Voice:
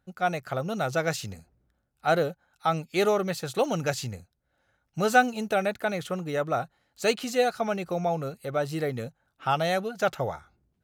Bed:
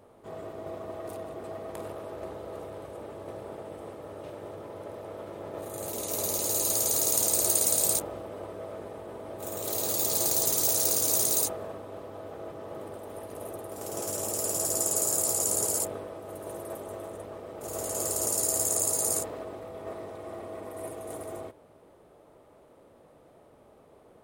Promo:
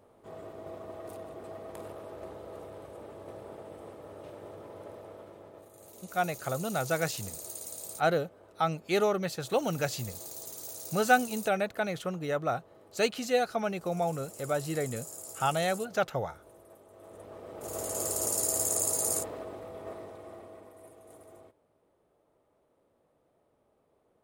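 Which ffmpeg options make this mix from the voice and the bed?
-filter_complex "[0:a]adelay=5950,volume=-3dB[a];[1:a]volume=10.5dB,afade=t=out:st=4.87:d=0.84:silence=0.237137,afade=t=in:st=16.93:d=0.64:silence=0.177828,afade=t=out:st=19.73:d=1.07:silence=0.237137[b];[a][b]amix=inputs=2:normalize=0"

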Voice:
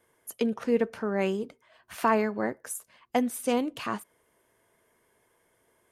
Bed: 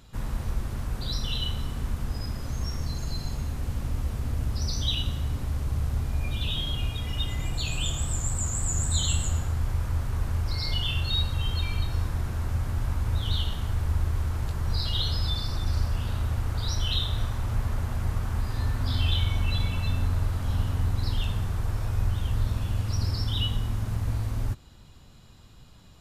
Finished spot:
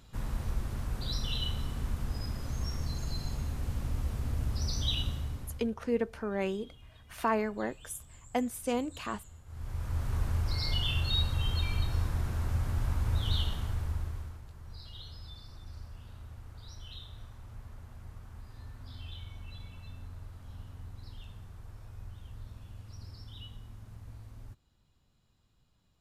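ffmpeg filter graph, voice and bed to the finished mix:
-filter_complex "[0:a]adelay=5200,volume=-5dB[a];[1:a]volume=18.5dB,afade=t=out:st=5.01:d=0.73:silence=0.0841395,afade=t=in:st=9.45:d=0.68:silence=0.0749894,afade=t=out:st=13.4:d=1.02:silence=0.149624[b];[a][b]amix=inputs=2:normalize=0"

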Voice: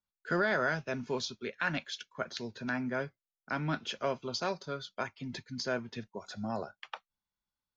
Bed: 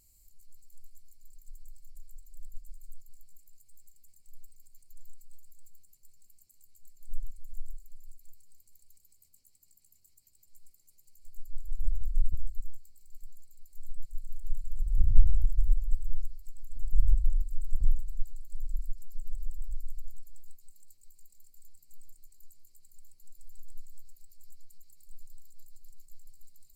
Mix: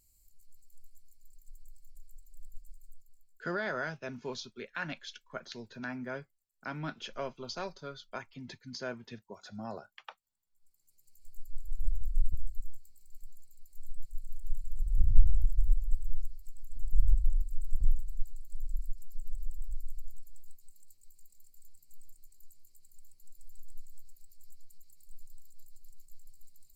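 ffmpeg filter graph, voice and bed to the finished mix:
-filter_complex "[0:a]adelay=3150,volume=-5dB[a];[1:a]volume=19dB,afade=t=out:st=2.65:d=0.83:silence=0.0944061,afade=t=in:st=10.54:d=0.67:silence=0.0707946[b];[a][b]amix=inputs=2:normalize=0"

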